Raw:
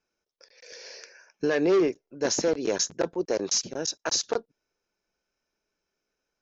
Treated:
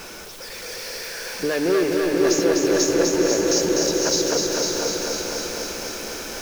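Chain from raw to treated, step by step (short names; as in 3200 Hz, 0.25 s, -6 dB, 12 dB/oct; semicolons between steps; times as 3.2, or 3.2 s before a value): zero-crossing step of -31 dBFS; diffused feedback echo 0.517 s, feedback 45%, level -4 dB; lo-fi delay 0.25 s, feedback 80%, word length 8-bit, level -3.5 dB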